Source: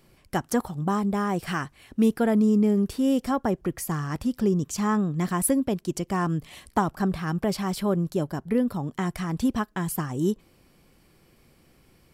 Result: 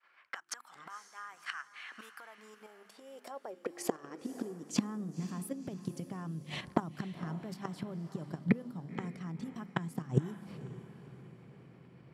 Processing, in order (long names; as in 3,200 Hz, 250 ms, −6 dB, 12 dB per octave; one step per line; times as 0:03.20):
downward expander −53 dBFS
mains-hum notches 50/100/150/200/250/300/350 Hz
low-pass that shuts in the quiet parts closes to 2,100 Hz, open at −22 dBFS
output level in coarse steps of 10 dB
gate with flip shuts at −26 dBFS, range −25 dB
high-pass filter sweep 1,400 Hz → 140 Hz, 0:01.89–0:05.57
feedback delay with all-pass diffusion 518 ms, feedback 46%, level −13.5 dB
level +10 dB